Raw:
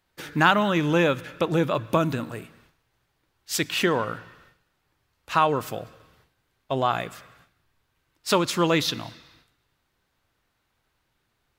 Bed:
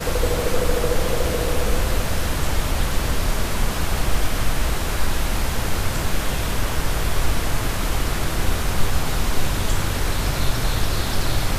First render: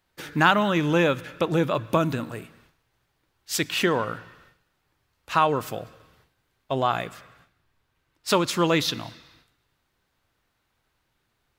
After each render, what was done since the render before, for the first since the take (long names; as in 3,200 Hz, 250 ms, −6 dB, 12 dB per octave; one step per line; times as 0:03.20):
0:07.09–0:08.28: high-shelf EQ 5,100 Hz −4.5 dB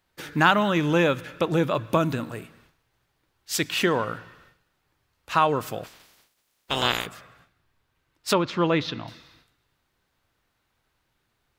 0:05.83–0:07.05: ceiling on every frequency bin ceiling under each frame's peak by 28 dB
0:08.33–0:09.08: high-frequency loss of the air 230 metres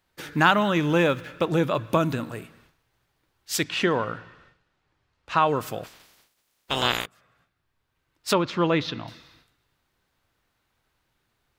0:00.83–0:01.47: running median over 5 samples
0:03.63–0:05.47: high-frequency loss of the air 81 metres
0:07.06–0:08.36: fade in, from −21.5 dB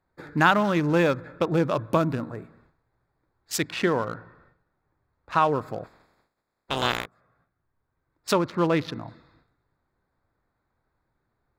adaptive Wiener filter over 15 samples
dynamic equaliser 3,000 Hz, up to −5 dB, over −42 dBFS, Q 3.4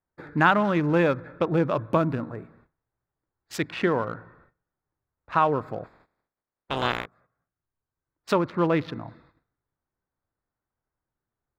noise gate −57 dBFS, range −12 dB
bass and treble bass 0 dB, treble −12 dB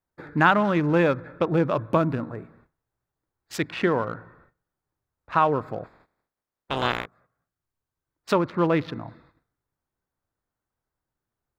level +1 dB